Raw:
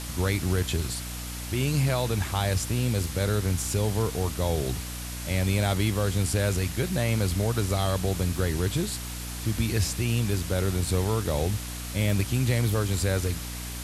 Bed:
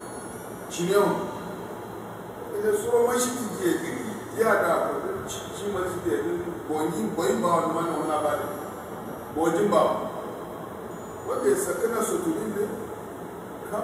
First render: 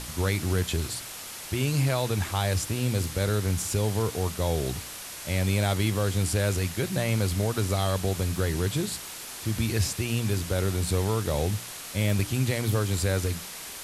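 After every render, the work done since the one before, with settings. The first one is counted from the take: de-hum 60 Hz, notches 5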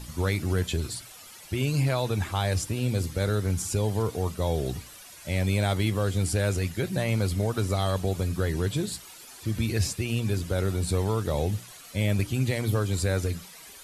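noise reduction 12 dB, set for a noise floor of -40 dBFS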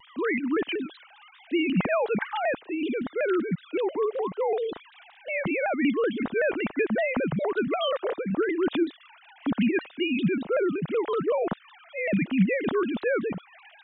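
formants replaced by sine waves; vibrato with a chosen wave saw down 5.3 Hz, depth 160 cents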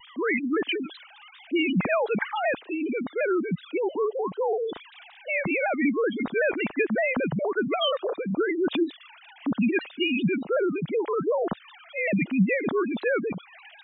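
spectral gate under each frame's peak -20 dB strong; treble shelf 2.6 kHz +9 dB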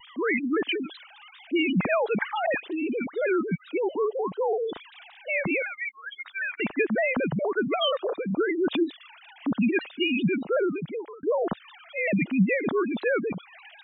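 2.46–3.69 s: phase dispersion highs, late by 96 ms, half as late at 1.9 kHz; 5.62–6.60 s: high-pass 1.5 kHz 24 dB/octave; 10.63–11.23 s: fade out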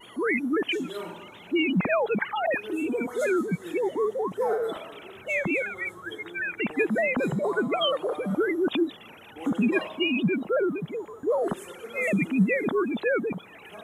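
add bed -15.5 dB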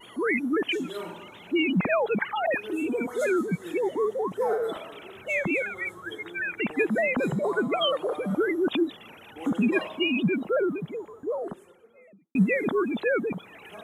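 10.46–12.35 s: studio fade out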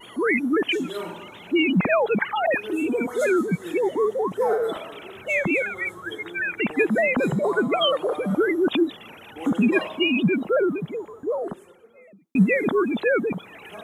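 trim +4 dB

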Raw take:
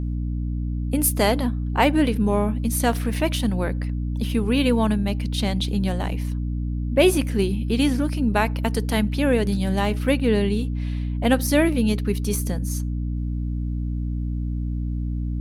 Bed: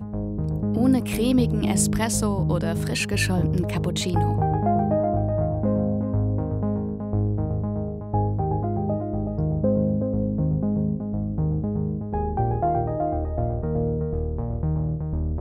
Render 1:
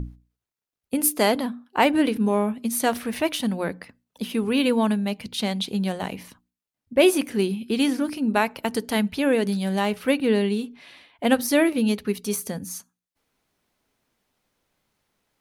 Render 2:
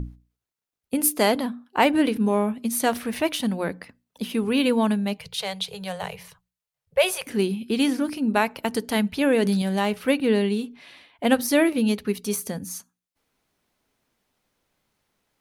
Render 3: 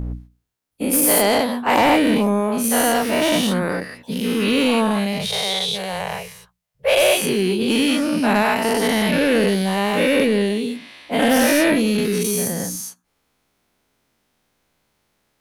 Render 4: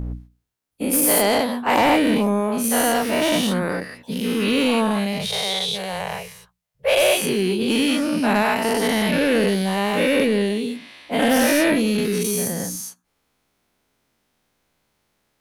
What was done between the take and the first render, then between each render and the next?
hum notches 60/120/180/240/300 Hz
5.18–7.27 s: elliptic band-stop 170–430 Hz; 9.21–9.62 s: level flattener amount 50%
every event in the spectrogram widened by 240 ms; saturation -8.5 dBFS, distortion -16 dB
trim -1.5 dB

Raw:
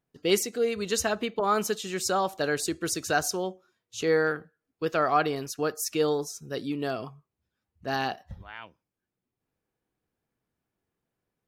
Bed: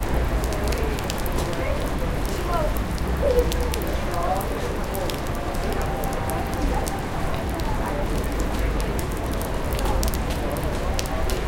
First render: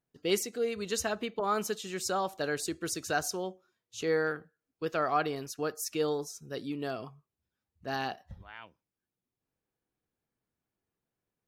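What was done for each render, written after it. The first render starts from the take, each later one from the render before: trim -5 dB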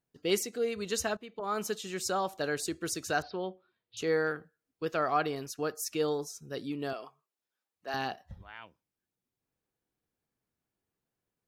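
1.17–1.73 s: fade in, from -16.5 dB; 3.22–3.97 s: steep low-pass 4.5 kHz 72 dB/octave; 6.93–7.94 s: high-pass 470 Hz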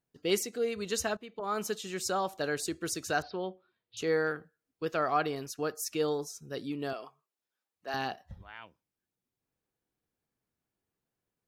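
no audible change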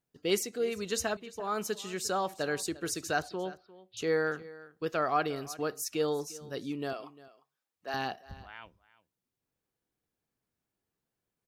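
delay 350 ms -19 dB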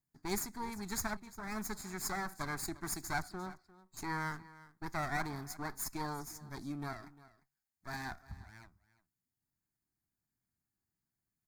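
comb filter that takes the minimum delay 0.42 ms; static phaser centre 1.2 kHz, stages 4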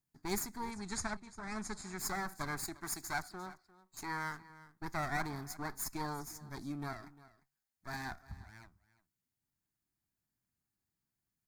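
0.71–1.99 s: Chebyshev low-pass 9.1 kHz, order 4; 2.65–4.50 s: bass shelf 390 Hz -6.5 dB

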